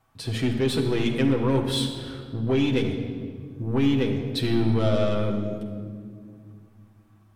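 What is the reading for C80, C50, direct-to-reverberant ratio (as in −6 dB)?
7.0 dB, 6.0 dB, 0.5 dB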